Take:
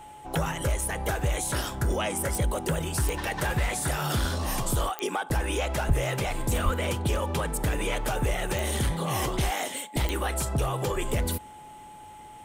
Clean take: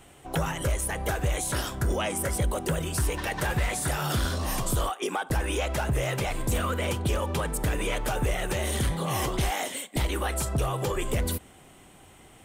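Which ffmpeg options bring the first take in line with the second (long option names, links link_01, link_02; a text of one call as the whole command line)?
ffmpeg -i in.wav -filter_complex "[0:a]adeclick=threshold=4,bandreject=frequency=850:width=30,asplit=3[link_01][link_02][link_03];[link_01]afade=type=out:start_time=5.87:duration=0.02[link_04];[link_02]highpass=frequency=140:width=0.5412,highpass=frequency=140:width=1.3066,afade=type=in:start_time=5.87:duration=0.02,afade=type=out:start_time=5.99:duration=0.02[link_05];[link_03]afade=type=in:start_time=5.99:duration=0.02[link_06];[link_04][link_05][link_06]amix=inputs=3:normalize=0,asplit=3[link_07][link_08][link_09];[link_07]afade=type=out:start_time=6.64:duration=0.02[link_10];[link_08]highpass=frequency=140:width=0.5412,highpass=frequency=140:width=1.3066,afade=type=in:start_time=6.64:duration=0.02,afade=type=out:start_time=6.76:duration=0.02[link_11];[link_09]afade=type=in:start_time=6.76:duration=0.02[link_12];[link_10][link_11][link_12]amix=inputs=3:normalize=0" out.wav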